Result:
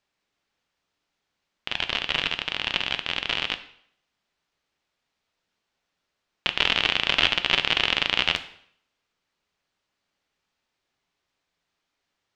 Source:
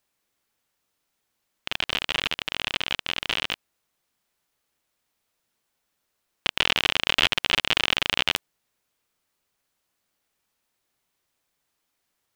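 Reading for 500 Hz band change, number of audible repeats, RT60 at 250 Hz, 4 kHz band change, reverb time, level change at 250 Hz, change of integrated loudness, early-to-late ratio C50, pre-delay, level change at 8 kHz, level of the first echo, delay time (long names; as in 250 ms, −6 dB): +0.5 dB, no echo audible, 0.60 s, +1.0 dB, 0.65 s, +0.5 dB, +1.0 dB, 13.5 dB, 4 ms, −5.5 dB, no echo audible, no echo audible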